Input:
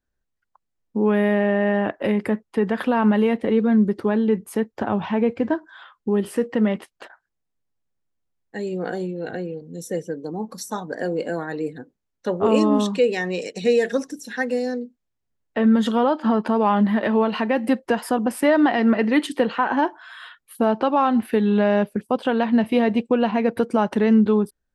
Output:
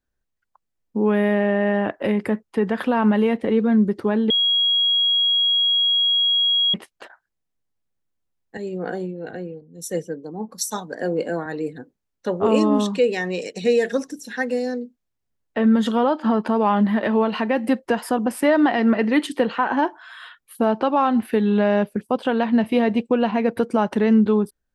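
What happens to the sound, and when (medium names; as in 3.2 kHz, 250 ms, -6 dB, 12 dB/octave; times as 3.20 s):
4.30–6.74 s: bleep 3.3 kHz -15.5 dBFS
8.57–11.46 s: three bands expanded up and down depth 100%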